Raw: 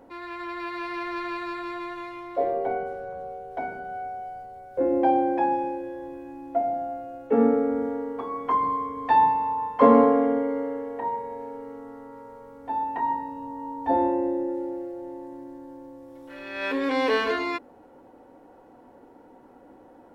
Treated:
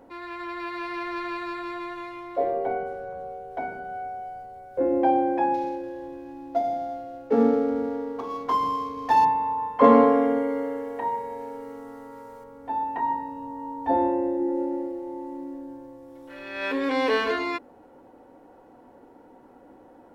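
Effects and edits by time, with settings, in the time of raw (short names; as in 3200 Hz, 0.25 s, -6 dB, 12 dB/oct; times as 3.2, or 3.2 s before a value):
5.54–9.25 median filter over 15 samples
9.84–12.44 high shelf 2400 Hz +9.5 dB
14.34–15.48 reverb throw, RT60 2.4 s, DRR 1.5 dB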